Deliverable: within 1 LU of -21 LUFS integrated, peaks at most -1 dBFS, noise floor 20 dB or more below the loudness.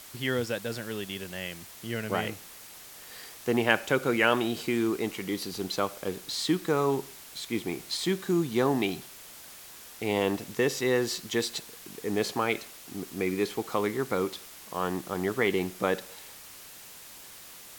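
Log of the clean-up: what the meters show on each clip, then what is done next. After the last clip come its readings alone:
noise floor -48 dBFS; noise floor target -50 dBFS; loudness -29.5 LUFS; peak -6.0 dBFS; loudness target -21.0 LUFS
-> denoiser 6 dB, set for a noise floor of -48 dBFS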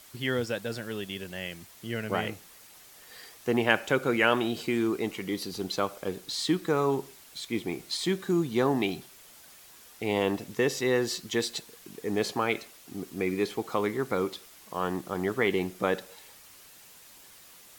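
noise floor -53 dBFS; loudness -29.5 LUFS; peak -6.0 dBFS; loudness target -21.0 LUFS
-> gain +8.5 dB; limiter -1 dBFS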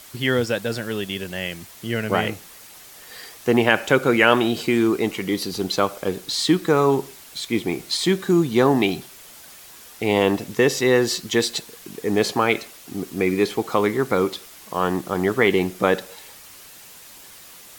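loudness -21.5 LUFS; peak -1.0 dBFS; noise floor -44 dBFS

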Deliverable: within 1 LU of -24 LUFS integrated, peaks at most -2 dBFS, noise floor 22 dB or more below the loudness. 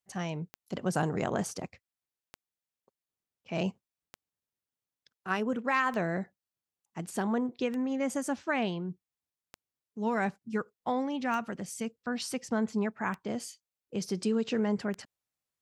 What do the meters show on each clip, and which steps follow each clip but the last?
clicks 9; loudness -33.0 LUFS; peak -15.5 dBFS; loudness target -24.0 LUFS
-> de-click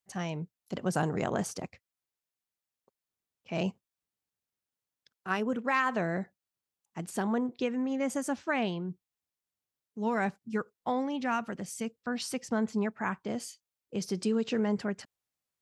clicks 0; loudness -33.0 LUFS; peak -15.5 dBFS; loudness target -24.0 LUFS
-> gain +9 dB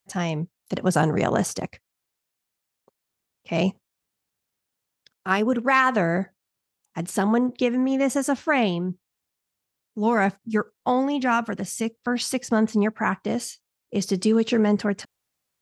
loudness -24.0 LUFS; peak -6.5 dBFS; noise floor -82 dBFS

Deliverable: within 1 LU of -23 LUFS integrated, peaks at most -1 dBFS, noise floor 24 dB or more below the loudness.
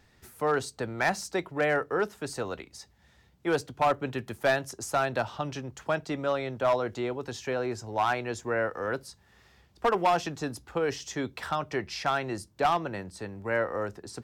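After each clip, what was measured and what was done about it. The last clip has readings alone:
clipped 0.6%; flat tops at -18.0 dBFS; loudness -30.0 LUFS; peak -18.0 dBFS; loudness target -23.0 LUFS
-> clip repair -18 dBFS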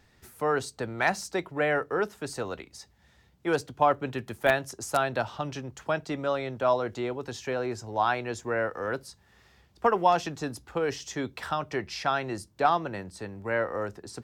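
clipped 0.0%; loudness -29.5 LUFS; peak -9.0 dBFS; loudness target -23.0 LUFS
-> gain +6.5 dB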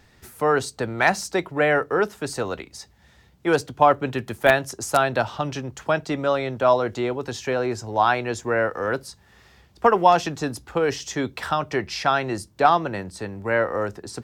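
loudness -23.0 LUFS; peak -2.5 dBFS; noise floor -56 dBFS

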